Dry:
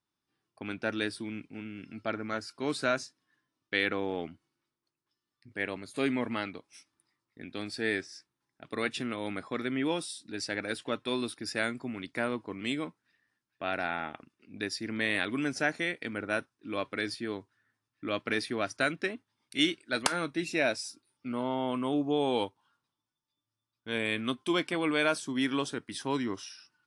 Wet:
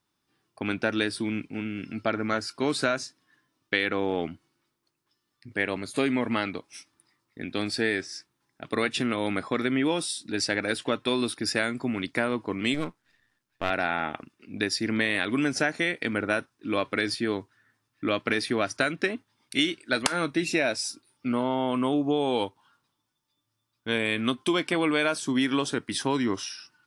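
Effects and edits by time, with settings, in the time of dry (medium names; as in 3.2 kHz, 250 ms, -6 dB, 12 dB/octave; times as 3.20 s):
12.74–13.70 s: partial rectifier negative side -12 dB
whole clip: compression, threshold -30 dBFS; trim +9 dB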